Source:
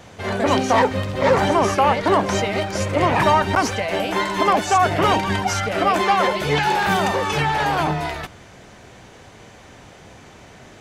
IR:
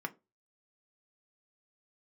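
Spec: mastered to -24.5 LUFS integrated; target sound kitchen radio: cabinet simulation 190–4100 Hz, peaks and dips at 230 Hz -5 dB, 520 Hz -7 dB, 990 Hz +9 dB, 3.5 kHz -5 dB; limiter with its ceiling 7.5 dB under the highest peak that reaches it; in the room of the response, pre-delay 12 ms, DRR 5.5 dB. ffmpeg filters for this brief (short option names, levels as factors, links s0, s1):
-filter_complex "[0:a]alimiter=limit=0.237:level=0:latency=1,asplit=2[s0][s1];[1:a]atrim=start_sample=2205,adelay=12[s2];[s1][s2]afir=irnorm=-1:irlink=0,volume=0.422[s3];[s0][s3]amix=inputs=2:normalize=0,highpass=190,equalizer=f=230:t=q:w=4:g=-5,equalizer=f=520:t=q:w=4:g=-7,equalizer=f=990:t=q:w=4:g=9,equalizer=f=3500:t=q:w=4:g=-5,lowpass=f=4100:w=0.5412,lowpass=f=4100:w=1.3066,volume=0.562"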